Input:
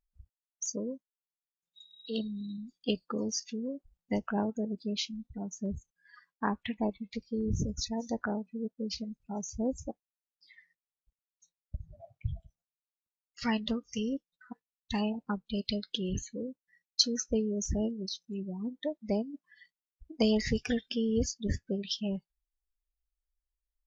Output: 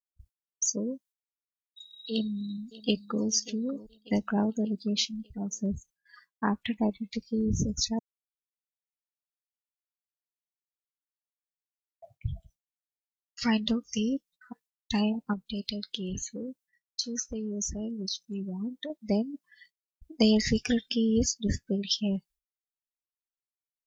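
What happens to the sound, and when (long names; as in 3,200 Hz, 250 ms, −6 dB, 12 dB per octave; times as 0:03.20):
0:02.12–0:03.27: delay throw 590 ms, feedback 50%, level −16 dB
0:07.99–0:12.02: silence
0:15.33–0:18.90: downward compressor, threshold −34 dBFS
whole clip: high-shelf EQ 3,100 Hz +9.5 dB; downward expander −55 dBFS; dynamic equaliser 210 Hz, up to +5 dB, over −41 dBFS, Q 0.9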